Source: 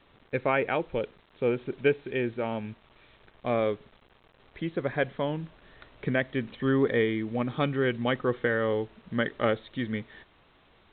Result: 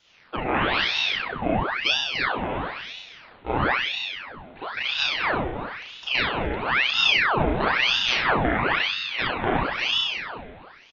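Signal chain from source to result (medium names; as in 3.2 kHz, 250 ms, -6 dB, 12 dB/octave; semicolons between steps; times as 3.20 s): speakerphone echo 260 ms, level -23 dB; wow and flutter 18 cents; on a send: feedback delay 341 ms, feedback 25%, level -10 dB; on the sum: spring tank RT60 1.3 s, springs 32 ms, chirp 75 ms, DRR -6 dB; ring modulator with a swept carrier 1.7 kHz, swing 90%, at 1 Hz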